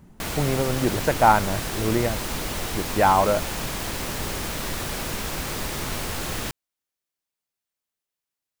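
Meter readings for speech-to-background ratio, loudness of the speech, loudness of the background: 6.5 dB, -22.5 LUFS, -29.0 LUFS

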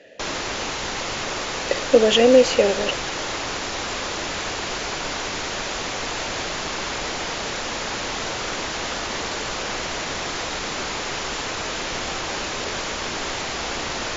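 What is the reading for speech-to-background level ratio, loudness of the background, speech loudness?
9.0 dB, -26.5 LUFS, -17.5 LUFS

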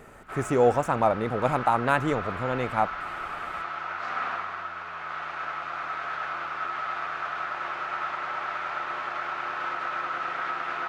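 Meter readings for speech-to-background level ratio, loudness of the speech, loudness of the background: 6.5 dB, -26.0 LUFS, -32.5 LUFS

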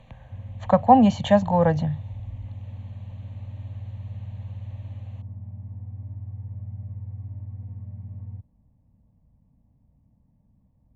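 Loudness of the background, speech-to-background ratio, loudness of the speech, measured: -37.5 LUFS, 18.0 dB, -19.5 LUFS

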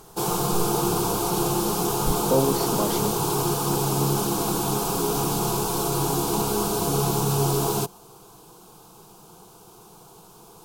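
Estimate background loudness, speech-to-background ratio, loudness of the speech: -23.5 LUFS, -5.0 dB, -28.5 LUFS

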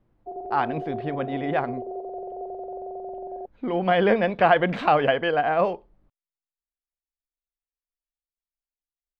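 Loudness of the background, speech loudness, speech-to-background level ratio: -35.0 LUFS, -23.5 LUFS, 11.5 dB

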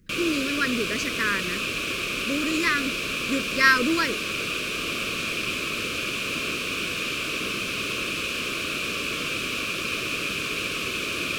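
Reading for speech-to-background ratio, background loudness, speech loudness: 1.5 dB, -26.5 LUFS, -25.0 LUFS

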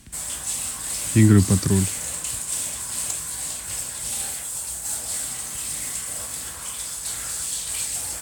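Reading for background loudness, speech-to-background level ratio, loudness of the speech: -26.5 LUFS, 7.5 dB, -19.0 LUFS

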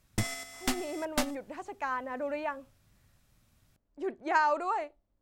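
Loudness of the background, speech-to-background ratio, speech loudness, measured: -35.5 LUFS, 2.0 dB, -33.5 LUFS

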